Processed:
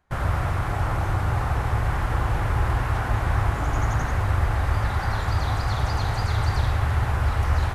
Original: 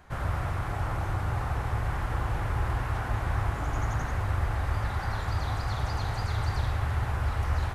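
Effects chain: gate with hold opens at -30 dBFS; trim +6 dB

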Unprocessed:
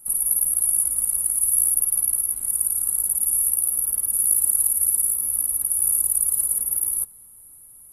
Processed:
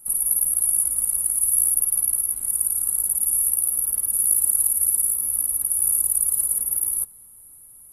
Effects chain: 3.51–4.29 s: crackle 76 per s -45 dBFS

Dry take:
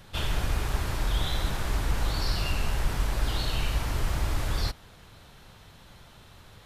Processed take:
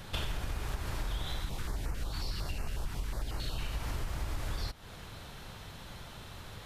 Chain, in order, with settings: compression 10:1, threshold -36 dBFS, peak gain reduction 16 dB; 1.40–3.61 s: step-sequenced notch 11 Hz 530–3500 Hz; trim +4.5 dB

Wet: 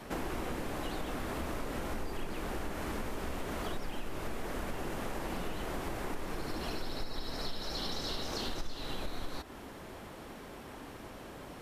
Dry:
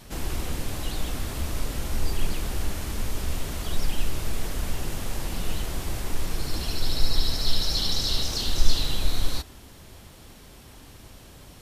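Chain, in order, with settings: three-band isolator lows -13 dB, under 200 Hz, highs -13 dB, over 2.2 kHz; compression 6:1, threshold -39 dBFS, peak gain reduction 17.5 dB; trim +6 dB

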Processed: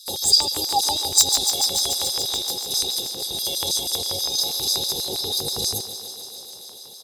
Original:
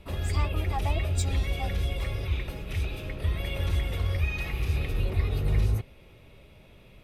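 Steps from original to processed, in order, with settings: self-modulated delay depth 0.063 ms; inverse Chebyshev band-stop 1–2.6 kHz, stop band 40 dB; peaking EQ 340 Hz -4 dB 2.3 oct; comb 0.8 ms, depth 95%; LFO high-pass square 6.2 Hz 870–5000 Hz; thinning echo 144 ms, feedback 83%, high-pass 150 Hz, level -12 dB; loudness maximiser +23 dB; trim -1 dB

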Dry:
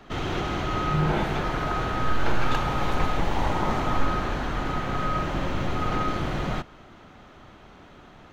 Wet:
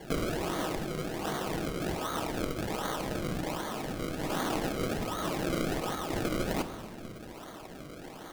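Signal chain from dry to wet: tracing distortion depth 0.41 ms; high-pass 200 Hz 24 dB/octave; compressor with a negative ratio -34 dBFS, ratio -1; decimation with a swept rate 34×, swing 100% 1.3 Hz; simulated room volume 1400 m³, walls mixed, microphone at 0.61 m

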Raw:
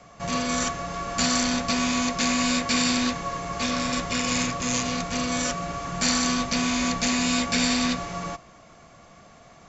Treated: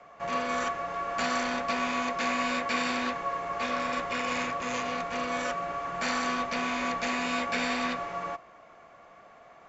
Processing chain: three-band isolator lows -15 dB, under 360 Hz, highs -17 dB, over 2.7 kHz

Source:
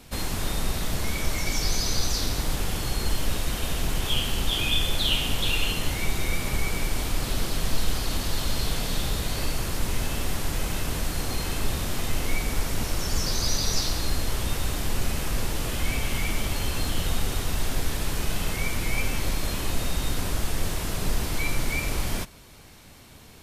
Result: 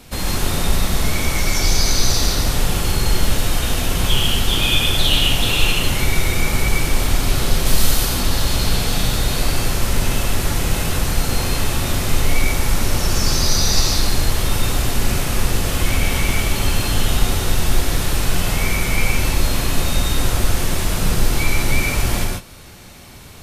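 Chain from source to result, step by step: 7.65–8.05 s: treble shelf 5.6 kHz -> 8.9 kHz +9.5 dB; gated-style reverb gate 170 ms rising, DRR -0.5 dB; trim +5.5 dB

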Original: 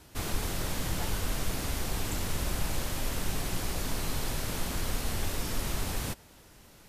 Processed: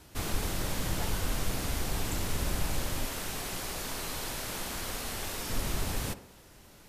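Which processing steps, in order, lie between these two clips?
3.05–5.50 s: bass shelf 270 Hz -10 dB; tape echo 63 ms, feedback 62%, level -10 dB, low-pass 1.2 kHz

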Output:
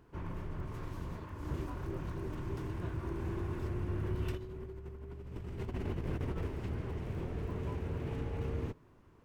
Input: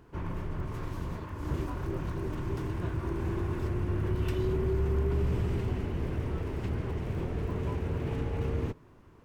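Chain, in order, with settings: 4.32–6.47 s: compressor with a negative ratio -33 dBFS, ratio -0.5; trim -5.5 dB

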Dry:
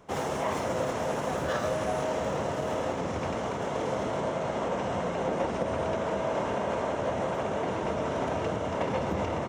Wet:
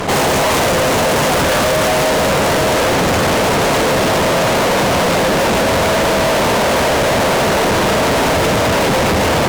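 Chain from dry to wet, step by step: fuzz box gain 54 dB, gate -59 dBFS

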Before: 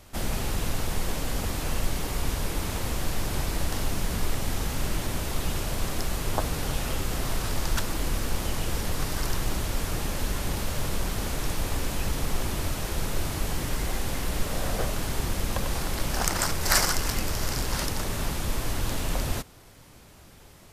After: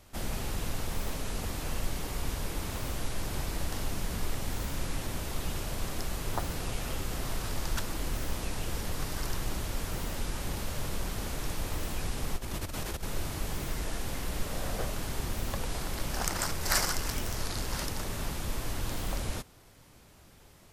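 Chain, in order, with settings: 12.36–13.03 s: compressor with a negative ratio -29 dBFS, ratio -0.5; warped record 33 1/3 rpm, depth 250 cents; trim -5.5 dB

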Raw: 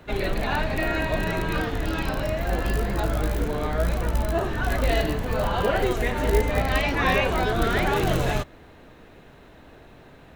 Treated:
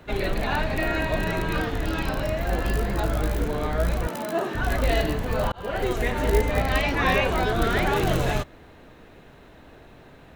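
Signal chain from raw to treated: 4.07–4.55 s: high-pass 180 Hz 24 dB/octave; 5.52–6.11 s: fade in equal-power

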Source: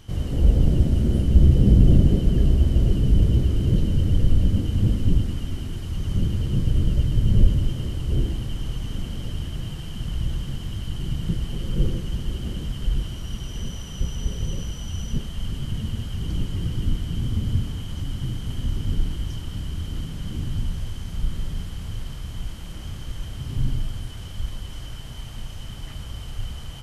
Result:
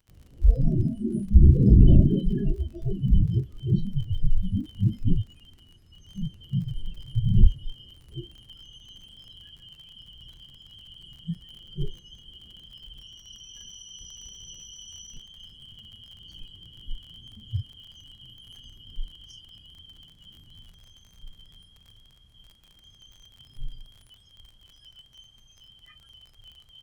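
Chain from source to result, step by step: spectral noise reduction 27 dB; crackle 44 per s -42 dBFS

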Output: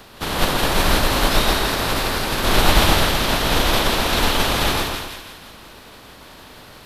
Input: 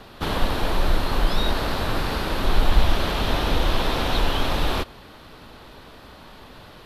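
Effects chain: spectral contrast reduction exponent 0.66; two-band feedback delay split 1.4 kHz, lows 125 ms, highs 166 ms, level -4 dB

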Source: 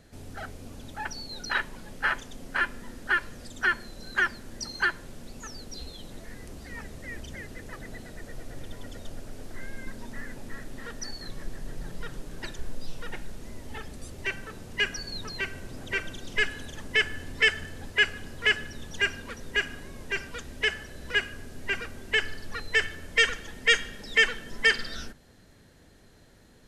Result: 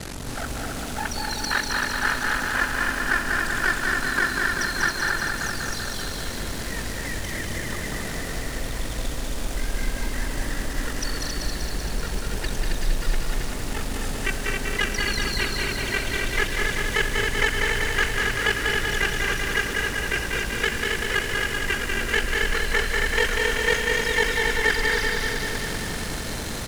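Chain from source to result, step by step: one-bit delta coder 64 kbps, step -36.5 dBFS; in parallel at +3 dB: compression, threshold -39 dBFS, peak gain reduction 17.5 dB; on the sum: ring modulator 23 Hz; loudspeakers at several distances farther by 78 m -9 dB, 93 m -4 dB; bit-crushed delay 193 ms, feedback 80%, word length 8-bit, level -3.5 dB; trim +3.5 dB

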